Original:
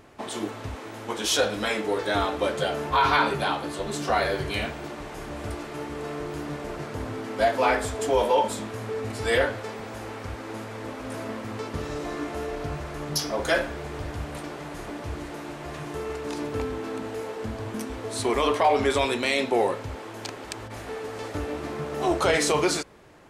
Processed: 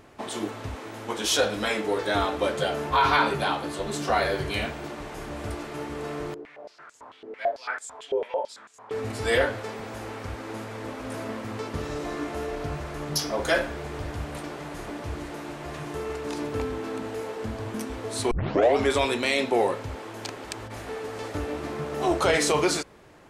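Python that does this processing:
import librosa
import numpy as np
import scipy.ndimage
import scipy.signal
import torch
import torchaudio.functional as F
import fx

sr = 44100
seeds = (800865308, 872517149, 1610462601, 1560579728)

y = fx.filter_held_bandpass(x, sr, hz=9.0, low_hz=420.0, high_hz=7300.0, at=(6.34, 8.91))
y = fx.edit(y, sr, fx.tape_start(start_s=18.31, length_s=0.45), tone=tone)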